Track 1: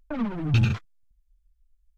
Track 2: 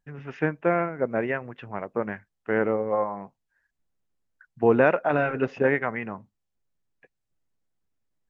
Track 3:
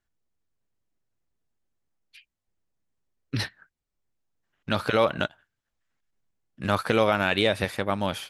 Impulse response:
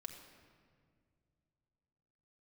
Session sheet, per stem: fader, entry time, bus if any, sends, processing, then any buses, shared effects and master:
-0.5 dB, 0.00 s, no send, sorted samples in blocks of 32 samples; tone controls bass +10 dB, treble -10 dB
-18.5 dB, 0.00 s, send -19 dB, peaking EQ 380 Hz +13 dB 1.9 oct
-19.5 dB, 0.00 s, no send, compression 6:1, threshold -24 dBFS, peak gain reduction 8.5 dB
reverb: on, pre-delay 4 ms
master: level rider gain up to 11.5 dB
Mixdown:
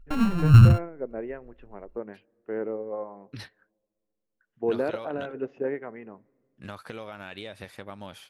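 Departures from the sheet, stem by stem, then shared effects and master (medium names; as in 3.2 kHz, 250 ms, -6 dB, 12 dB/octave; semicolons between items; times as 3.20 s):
stem 3 -19.5 dB -> -11.0 dB; master: missing level rider gain up to 11.5 dB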